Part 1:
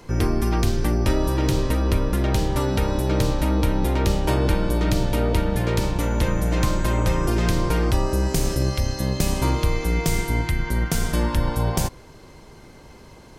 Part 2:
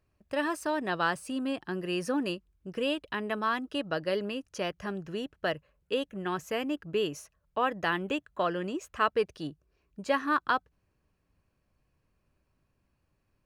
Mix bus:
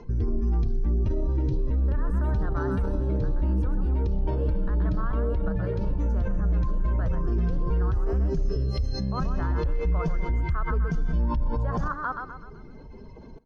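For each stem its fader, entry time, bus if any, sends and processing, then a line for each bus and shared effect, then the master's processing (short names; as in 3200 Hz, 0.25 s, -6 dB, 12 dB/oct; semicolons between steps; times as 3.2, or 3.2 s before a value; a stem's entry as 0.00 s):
+1.5 dB, 0.00 s, no send, echo send -21 dB, spectral contrast raised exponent 1.9; steep low-pass 6300 Hz 48 dB/oct; comb 4.6 ms, depth 36%
-7.5 dB, 1.55 s, no send, echo send -6.5 dB, resonant high shelf 1900 Hz -11 dB, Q 3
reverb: off
echo: feedback echo 0.126 s, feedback 42%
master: limiter -18.5 dBFS, peak gain reduction 10.5 dB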